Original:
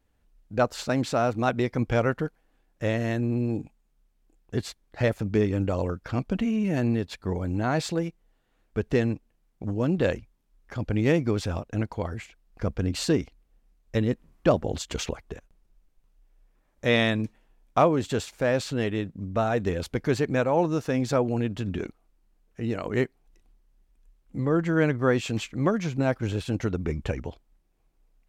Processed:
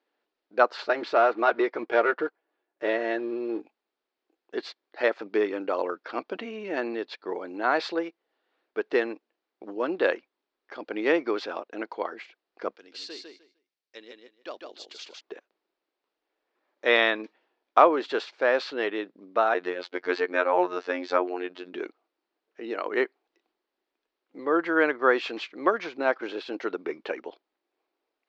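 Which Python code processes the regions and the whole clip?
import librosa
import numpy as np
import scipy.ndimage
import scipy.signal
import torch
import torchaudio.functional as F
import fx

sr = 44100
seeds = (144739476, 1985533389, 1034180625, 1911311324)

y = fx.chain(x, sr, fx.high_shelf(hz=2500.0, db=-7.0),
    fx.leveller(passes=1),
    fx.notch_comb(f0_hz=260.0), at=(0.77, 3.6))
y = fx.chain(y, sr, fx.pre_emphasis(coefficient=0.9),
    fx.echo_feedback(ms=152, feedback_pct=18, wet_db=-4.0), at=(12.76, 15.21))
y = fx.chain(y, sr, fx.dynamic_eq(hz=2000.0, q=1.0, threshold_db=-41.0, ratio=4.0, max_db=3),
    fx.robotise(hz=89.8), at=(19.54, 21.73))
y = scipy.signal.sosfilt(scipy.signal.ellip(3, 1.0, 50, [340.0, 4600.0], 'bandpass', fs=sr, output='sos'), y)
y = fx.dynamic_eq(y, sr, hz=1300.0, q=0.78, threshold_db=-40.0, ratio=4.0, max_db=7)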